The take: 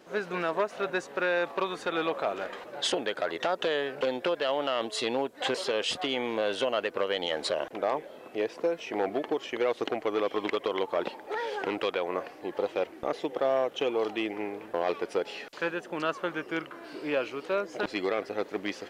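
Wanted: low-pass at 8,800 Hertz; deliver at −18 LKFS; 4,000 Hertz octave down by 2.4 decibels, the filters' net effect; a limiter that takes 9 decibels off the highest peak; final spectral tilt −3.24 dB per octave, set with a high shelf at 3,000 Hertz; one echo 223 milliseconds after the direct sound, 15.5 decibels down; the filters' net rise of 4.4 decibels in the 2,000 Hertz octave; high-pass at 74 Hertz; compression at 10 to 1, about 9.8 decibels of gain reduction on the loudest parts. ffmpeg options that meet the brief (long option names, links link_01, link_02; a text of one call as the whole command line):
ffmpeg -i in.wav -af "highpass=74,lowpass=8800,equalizer=frequency=2000:width_type=o:gain=7,highshelf=frequency=3000:gain=3,equalizer=frequency=4000:width_type=o:gain=-9,acompressor=threshold=-32dB:ratio=10,alimiter=level_in=3dB:limit=-24dB:level=0:latency=1,volume=-3dB,aecho=1:1:223:0.168,volume=21dB" out.wav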